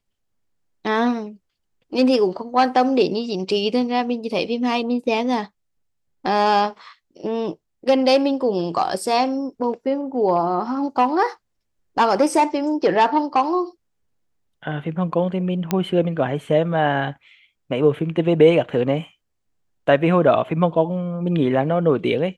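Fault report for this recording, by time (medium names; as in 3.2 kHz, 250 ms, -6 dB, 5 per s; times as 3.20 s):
15.71 s: pop -7 dBFS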